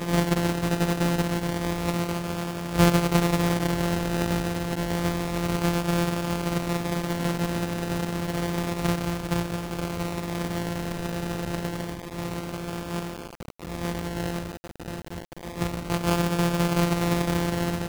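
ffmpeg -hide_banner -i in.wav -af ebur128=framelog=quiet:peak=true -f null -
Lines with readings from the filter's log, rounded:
Integrated loudness:
  I:         -26.9 LUFS
  Threshold: -37.2 LUFS
Loudness range:
  LRA:         8.2 LU
  Threshold: -47.6 LUFS
  LRA low:   -33.0 LUFS
  LRA high:  -24.7 LUFS
True peak:
  Peak:       -8.0 dBFS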